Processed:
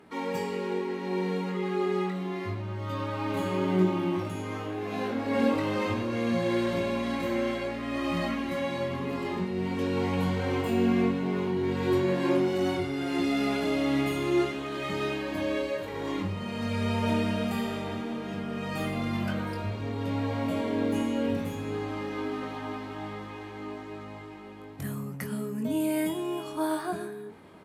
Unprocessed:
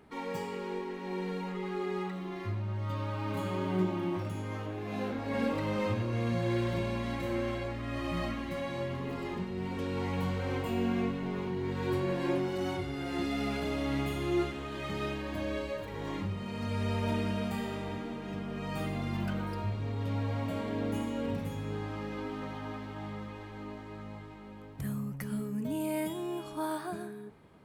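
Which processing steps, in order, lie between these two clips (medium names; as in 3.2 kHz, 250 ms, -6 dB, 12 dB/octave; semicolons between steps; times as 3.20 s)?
high-pass 100 Hz 12 dB/octave; peaking EQ 130 Hz -6 dB 0.57 oct; reverse; upward compressor, threshold -50 dBFS; reverse; doubling 22 ms -6.5 dB; trim +4.5 dB; AAC 96 kbps 32 kHz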